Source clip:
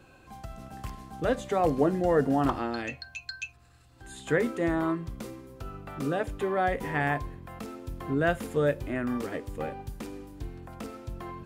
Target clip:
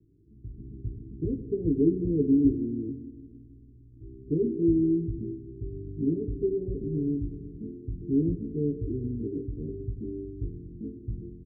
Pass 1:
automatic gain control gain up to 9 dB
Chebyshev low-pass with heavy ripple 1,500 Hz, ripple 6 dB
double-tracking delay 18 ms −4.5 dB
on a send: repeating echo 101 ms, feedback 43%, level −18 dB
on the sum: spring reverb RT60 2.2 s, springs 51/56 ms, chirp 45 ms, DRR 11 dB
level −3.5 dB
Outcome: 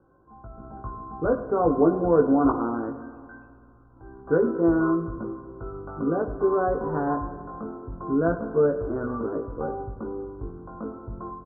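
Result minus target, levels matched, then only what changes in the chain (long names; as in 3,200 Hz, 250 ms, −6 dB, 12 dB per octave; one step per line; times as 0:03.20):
500 Hz band +3.5 dB
change: Chebyshev low-pass with heavy ripple 430 Hz, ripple 6 dB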